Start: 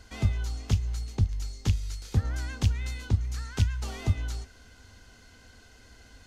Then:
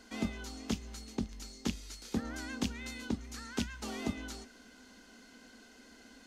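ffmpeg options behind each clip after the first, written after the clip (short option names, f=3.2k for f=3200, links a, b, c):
-af "lowshelf=f=160:t=q:w=3:g=-13,volume=-2dB"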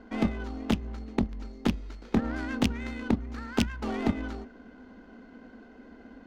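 -af "aeval=exprs='0.133*(cos(1*acos(clip(val(0)/0.133,-1,1)))-cos(1*PI/2))+0.0596*(cos(2*acos(clip(val(0)/0.133,-1,1)))-cos(2*PI/2))+0.0106*(cos(5*acos(clip(val(0)/0.133,-1,1)))-cos(5*PI/2))+0.0119*(cos(8*acos(clip(val(0)/0.133,-1,1)))-cos(8*PI/2))':c=same,adynamicsmooth=sensitivity=5:basefreq=1.1k,volume=7dB"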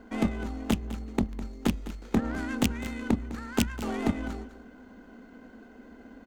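-af "aexciter=amount=2.4:drive=7.1:freq=6.8k,aecho=1:1:205:0.188"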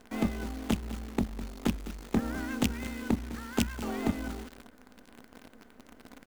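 -af "acrusher=bits=8:dc=4:mix=0:aa=0.000001,volume=-2.5dB"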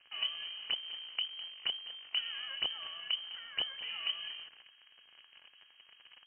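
-af "lowpass=f=2.7k:t=q:w=0.5098,lowpass=f=2.7k:t=q:w=0.6013,lowpass=f=2.7k:t=q:w=0.9,lowpass=f=2.7k:t=q:w=2.563,afreqshift=-3200,volume=-7dB"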